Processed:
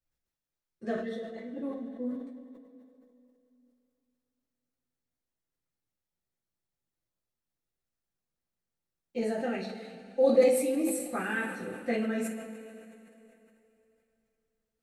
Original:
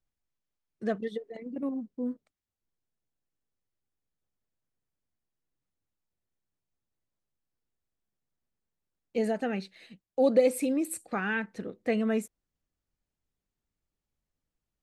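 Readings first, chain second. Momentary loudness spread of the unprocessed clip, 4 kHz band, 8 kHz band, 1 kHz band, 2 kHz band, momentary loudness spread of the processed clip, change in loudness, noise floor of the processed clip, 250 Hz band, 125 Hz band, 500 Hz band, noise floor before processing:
15 LU, 0.0 dB, +2.0 dB, -1.0 dB, -0.5 dB, 19 LU, -0.5 dB, under -85 dBFS, -1.5 dB, no reading, +1.0 dB, under -85 dBFS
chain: two-slope reverb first 0.34 s, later 3.1 s, from -17 dB, DRR -6 dB; decay stretcher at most 59 dB/s; trim -8 dB

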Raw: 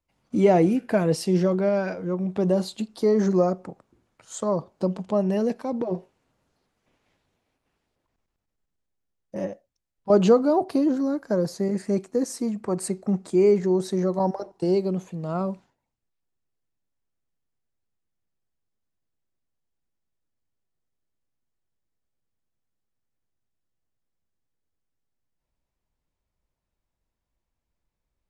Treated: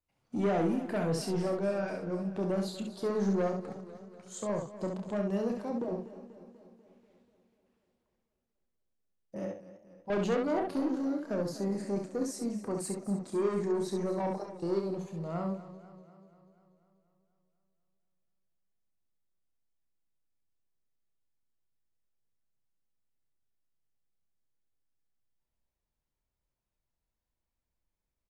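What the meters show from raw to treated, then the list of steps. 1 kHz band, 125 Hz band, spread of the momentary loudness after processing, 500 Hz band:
-8.0 dB, -9.0 dB, 12 LU, -10.0 dB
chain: saturation -19 dBFS, distortion -11 dB; on a send: early reflections 30 ms -7.5 dB, 67 ms -5 dB; on the sum: modulated delay 244 ms, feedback 60%, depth 75 cents, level -15 dB; trim -8 dB

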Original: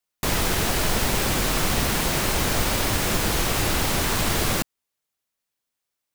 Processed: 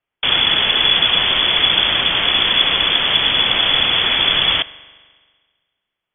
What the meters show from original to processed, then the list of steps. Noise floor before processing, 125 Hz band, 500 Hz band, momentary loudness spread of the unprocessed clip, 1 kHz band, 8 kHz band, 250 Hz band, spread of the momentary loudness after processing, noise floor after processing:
-83 dBFS, -7.5 dB, -0.5 dB, 1 LU, +3.5 dB, under -40 dB, -4.0 dB, 2 LU, -82 dBFS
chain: frequency inversion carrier 3.4 kHz; spring tank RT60 1.6 s, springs 42 ms, chirp 55 ms, DRR 18.5 dB; trim +7 dB

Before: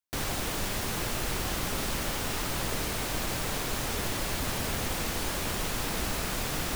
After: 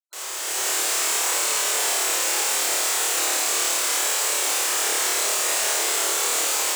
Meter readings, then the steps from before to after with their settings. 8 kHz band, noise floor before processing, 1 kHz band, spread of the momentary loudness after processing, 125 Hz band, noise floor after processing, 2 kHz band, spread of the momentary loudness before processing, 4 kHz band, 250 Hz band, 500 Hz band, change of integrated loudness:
+16.0 dB, -33 dBFS, +7.0 dB, 1 LU, under -35 dB, -30 dBFS, +8.5 dB, 0 LU, +10.0 dB, -6.5 dB, +5.0 dB, +11.0 dB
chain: spectral gate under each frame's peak -10 dB weak; steep high-pass 780 Hz 96 dB/octave; peaking EQ 8 kHz +10 dB 0.59 oct; level rider gain up to 10 dB; on a send: flutter echo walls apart 4.7 m, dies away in 0.83 s; on the sum: frequency shift -430 Hz; trim -5 dB

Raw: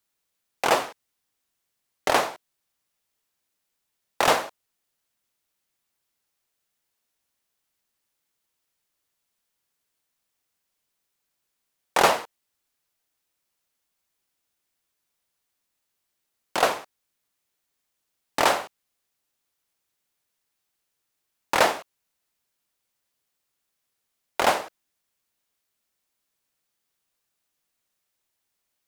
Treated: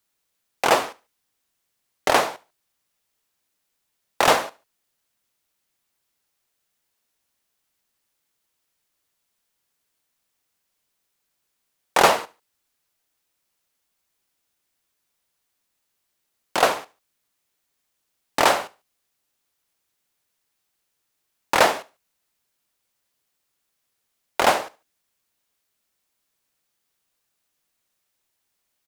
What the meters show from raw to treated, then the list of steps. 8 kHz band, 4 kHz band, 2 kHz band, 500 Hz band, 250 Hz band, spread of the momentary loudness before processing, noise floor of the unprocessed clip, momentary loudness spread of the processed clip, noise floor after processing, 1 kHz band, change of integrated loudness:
+3.0 dB, +3.0 dB, +3.0 dB, +3.0 dB, +3.0 dB, 15 LU, -80 dBFS, 14 LU, -76 dBFS, +3.0 dB, +3.0 dB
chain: feedback delay 72 ms, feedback 32%, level -22 dB; trim +3 dB

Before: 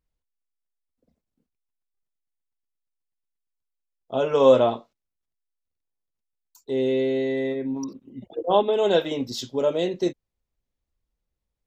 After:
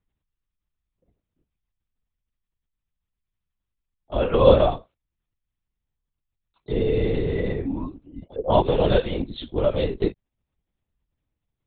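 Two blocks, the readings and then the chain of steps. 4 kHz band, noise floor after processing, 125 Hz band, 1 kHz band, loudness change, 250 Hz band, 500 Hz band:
-1.0 dB, -84 dBFS, +11.0 dB, +0.5 dB, +0.5 dB, 0.0 dB, 0.0 dB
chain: LPC vocoder at 8 kHz whisper; trim +1 dB

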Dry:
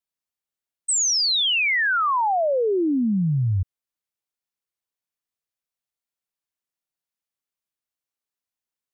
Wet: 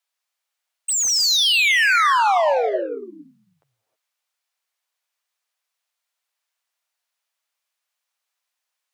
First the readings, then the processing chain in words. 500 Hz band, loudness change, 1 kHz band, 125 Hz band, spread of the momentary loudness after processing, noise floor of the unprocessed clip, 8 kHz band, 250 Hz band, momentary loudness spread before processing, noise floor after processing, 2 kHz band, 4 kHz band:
+1.5 dB, +4.0 dB, +4.5 dB, under -35 dB, 15 LU, under -85 dBFS, +2.0 dB, -15.5 dB, 7 LU, -82 dBFS, +4.5 dB, +3.5 dB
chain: high-pass 540 Hz 24 dB/octave; overdrive pedal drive 14 dB, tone 5.7 kHz, clips at -17.5 dBFS; gated-style reverb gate 340 ms rising, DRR 6.5 dB; trim +3 dB

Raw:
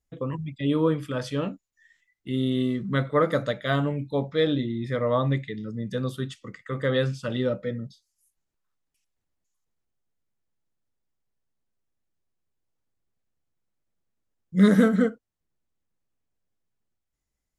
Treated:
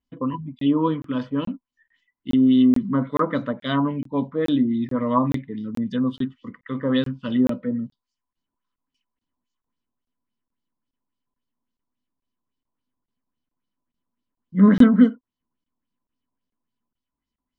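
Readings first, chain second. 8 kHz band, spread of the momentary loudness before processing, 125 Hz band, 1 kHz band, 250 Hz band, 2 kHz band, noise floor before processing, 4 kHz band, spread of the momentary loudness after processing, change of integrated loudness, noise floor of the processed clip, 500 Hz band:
no reading, 13 LU, -1.0 dB, +4.5 dB, +7.0 dB, -2.5 dB, -83 dBFS, -0.5 dB, 15 LU, +4.5 dB, under -85 dBFS, -2.0 dB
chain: LFO low-pass sine 3.6 Hz 870–4900 Hz; small resonant body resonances 250/1000/3000 Hz, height 16 dB, ringing for 55 ms; crackling interface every 0.43 s, samples 1024, zero, from 0.59 s; trim -4.5 dB

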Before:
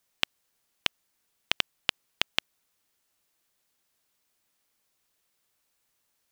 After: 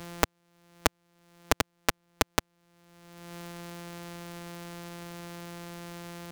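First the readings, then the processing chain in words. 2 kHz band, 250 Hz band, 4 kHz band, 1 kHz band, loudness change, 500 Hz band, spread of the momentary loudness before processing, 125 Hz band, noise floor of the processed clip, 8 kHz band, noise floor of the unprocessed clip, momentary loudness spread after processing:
+1.0 dB, +14.5 dB, -5.5 dB, +10.5 dB, -3.0 dB, +13.5 dB, 3 LU, +14.5 dB, -74 dBFS, +10.5 dB, -76 dBFS, 13 LU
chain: sorted samples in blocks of 256 samples; three bands compressed up and down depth 100%; trim +3 dB

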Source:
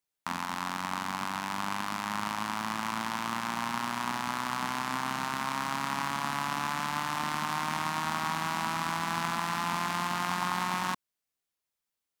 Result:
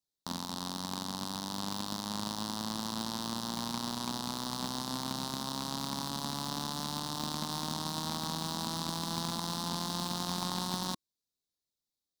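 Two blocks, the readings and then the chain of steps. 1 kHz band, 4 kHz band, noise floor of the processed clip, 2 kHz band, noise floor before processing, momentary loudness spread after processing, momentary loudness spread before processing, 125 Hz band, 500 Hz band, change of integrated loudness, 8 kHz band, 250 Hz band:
-8.5 dB, +2.0 dB, under -85 dBFS, -14.5 dB, under -85 dBFS, 3 LU, 3 LU, +1.0 dB, -1.0 dB, -3.5 dB, +1.0 dB, +1.0 dB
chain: FFT filter 320 Hz 0 dB, 1.1 kHz -11 dB, 2.3 kHz -29 dB, 3.8 kHz +3 dB, 10 kHz -6 dB; in parallel at -5.5 dB: bit crusher 5-bit

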